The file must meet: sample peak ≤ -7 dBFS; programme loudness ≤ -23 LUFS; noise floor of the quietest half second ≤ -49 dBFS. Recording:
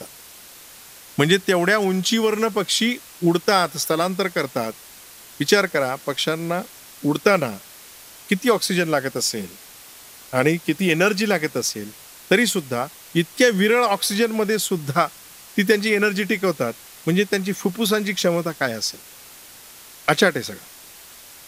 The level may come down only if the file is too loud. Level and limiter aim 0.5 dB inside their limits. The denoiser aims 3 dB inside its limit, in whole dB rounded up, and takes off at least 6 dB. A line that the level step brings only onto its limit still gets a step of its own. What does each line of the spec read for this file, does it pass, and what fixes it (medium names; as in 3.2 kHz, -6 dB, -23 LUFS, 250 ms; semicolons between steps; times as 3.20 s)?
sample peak -2.5 dBFS: fail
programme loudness -21.0 LUFS: fail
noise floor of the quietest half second -44 dBFS: fail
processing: noise reduction 6 dB, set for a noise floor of -44 dBFS; trim -2.5 dB; peak limiter -7.5 dBFS